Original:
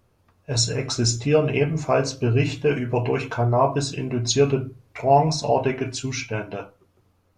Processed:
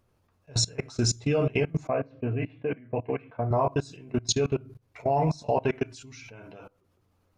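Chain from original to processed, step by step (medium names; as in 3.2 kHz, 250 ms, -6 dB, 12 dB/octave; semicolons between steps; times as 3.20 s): level held to a coarse grid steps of 23 dB; 1.87–3.51 s: cabinet simulation 130–2200 Hz, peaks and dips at 160 Hz -7 dB, 380 Hz -8 dB, 910 Hz -7 dB, 1.4 kHz -9 dB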